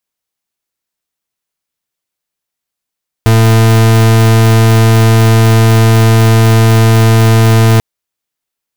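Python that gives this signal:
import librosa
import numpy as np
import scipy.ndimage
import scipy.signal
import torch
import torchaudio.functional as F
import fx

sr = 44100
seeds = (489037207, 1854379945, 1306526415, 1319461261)

y = fx.pulse(sr, length_s=4.54, hz=112.0, level_db=-6.0, duty_pct=40)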